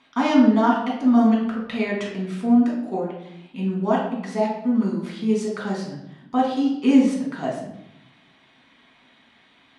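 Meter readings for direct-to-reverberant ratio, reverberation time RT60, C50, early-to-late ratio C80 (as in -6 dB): -4.0 dB, 0.80 s, 3.5 dB, 6.5 dB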